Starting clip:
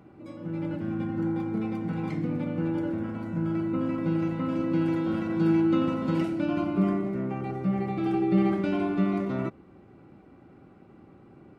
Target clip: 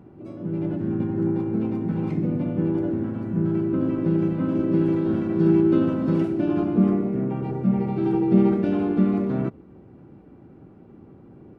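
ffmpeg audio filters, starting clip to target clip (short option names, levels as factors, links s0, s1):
-filter_complex "[0:a]asplit=2[s0][s1];[s1]asetrate=52444,aresample=44100,atempo=0.840896,volume=0.447[s2];[s0][s2]amix=inputs=2:normalize=0,tiltshelf=f=720:g=6"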